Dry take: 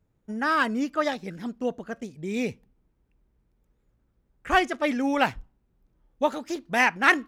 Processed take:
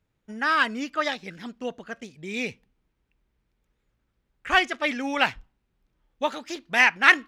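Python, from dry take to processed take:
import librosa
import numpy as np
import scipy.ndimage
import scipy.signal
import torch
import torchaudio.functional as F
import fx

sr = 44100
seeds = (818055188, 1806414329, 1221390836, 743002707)

y = fx.peak_eq(x, sr, hz=2900.0, db=11.5, octaves=2.7)
y = y * 10.0 ** (-5.5 / 20.0)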